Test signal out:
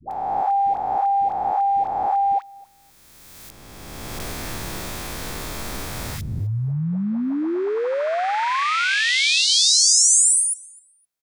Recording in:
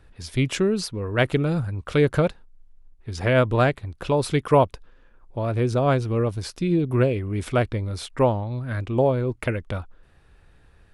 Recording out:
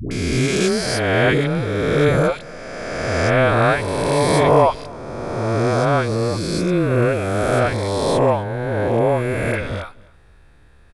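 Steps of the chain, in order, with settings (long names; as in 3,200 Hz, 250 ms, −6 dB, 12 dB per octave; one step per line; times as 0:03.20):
peak hold with a rise ahead of every peak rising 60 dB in 2.41 s
notch filter 2,900 Hz, Q 12
all-pass dispersion highs, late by 112 ms, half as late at 550 Hz
on a send: repeating echo 257 ms, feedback 18%, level −24 dB
on the sum: level +1 dB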